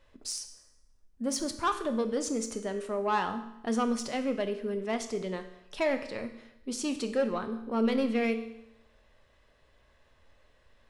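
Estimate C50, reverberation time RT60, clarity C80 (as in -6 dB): 11.0 dB, 0.85 s, 13.0 dB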